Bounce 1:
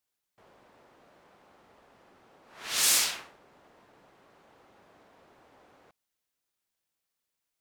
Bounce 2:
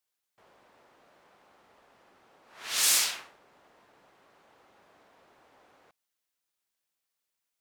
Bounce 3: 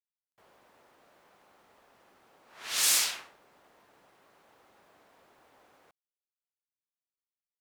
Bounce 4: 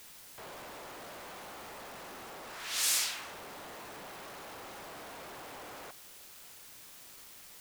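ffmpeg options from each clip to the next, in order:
-af "lowshelf=f=430:g=-6.5"
-af "acrusher=bits=11:mix=0:aa=0.000001,volume=-1dB"
-af "aeval=exprs='val(0)+0.5*0.0178*sgn(val(0))':c=same,volume=-5.5dB"

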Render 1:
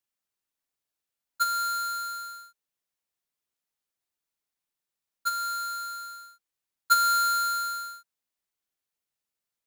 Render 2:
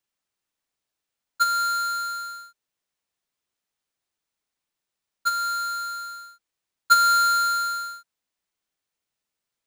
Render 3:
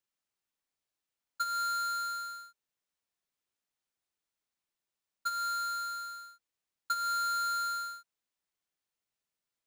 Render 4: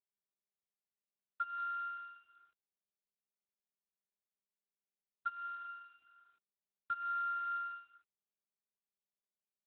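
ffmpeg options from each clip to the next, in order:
-af "equalizer=f=16k:t=o:w=0.71:g=-10.5,volume=5dB"
-af "acompressor=threshold=-25dB:ratio=10,volume=-6dB"
-af "aeval=exprs='0.0562*(cos(1*acos(clip(val(0)/0.0562,-1,1)))-cos(1*PI/2))+0.00501*(cos(6*acos(clip(val(0)/0.0562,-1,1)))-cos(6*PI/2))+0.0112*(cos(7*acos(clip(val(0)/0.0562,-1,1)))-cos(7*PI/2))':c=same,volume=-5dB" -ar 8000 -c:a libopencore_amrnb -b:a 12200

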